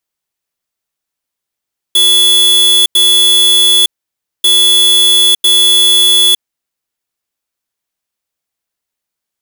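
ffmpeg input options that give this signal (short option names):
-f lavfi -i "aevalsrc='0.422*(2*lt(mod(3420*t,1),0.5)-1)*clip(min(mod(mod(t,2.49),1),0.91-mod(mod(t,2.49),1))/0.005,0,1)*lt(mod(t,2.49),2)':d=4.98:s=44100"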